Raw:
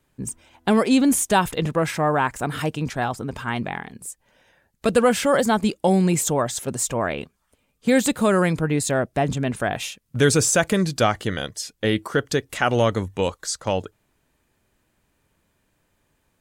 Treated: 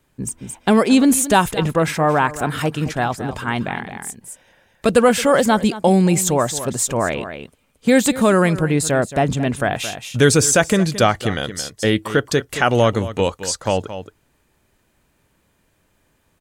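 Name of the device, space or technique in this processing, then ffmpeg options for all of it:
ducked delay: -filter_complex "[0:a]asplit=3[s0][s1][s2];[s1]adelay=222,volume=0.562[s3];[s2]apad=whole_len=733266[s4];[s3][s4]sidechaincompress=threshold=0.0355:ratio=4:attack=7.1:release=478[s5];[s0][s5]amix=inputs=2:normalize=0,volume=1.58"

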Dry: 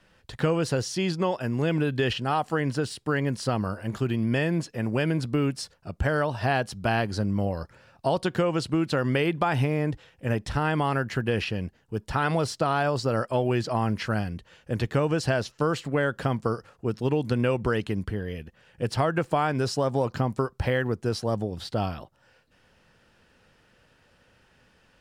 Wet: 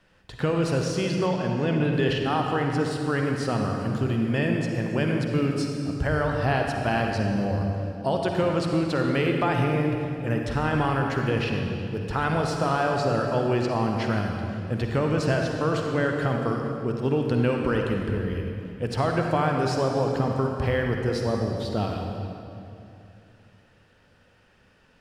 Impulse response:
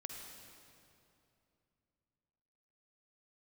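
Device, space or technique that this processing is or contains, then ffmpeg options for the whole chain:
swimming-pool hall: -filter_complex "[1:a]atrim=start_sample=2205[s0];[0:a][s0]afir=irnorm=-1:irlink=0,highshelf=f=5700:g=-4.5,asettb=1/sr,asplit=3[s1][s2][s3];[s1]atrim=end=1.264[s4];[s2]atrim=start=1.26:end=1.94,asetpts=PTS-STARTPTS,afade=t=in:d=0.004:c=qsin,afade=t=out:st=0.676:d=0.004:c=qsin,lowpass=7500[s5];[s3]atrim=start=1.936[s6];[s4][s5]acrossfade=d=0.004:c1=hsin:c2=qsin[s7];[s7][s6]acrossfade=d=0.004:c1=qsin:c2=hsin,volume=1.58"

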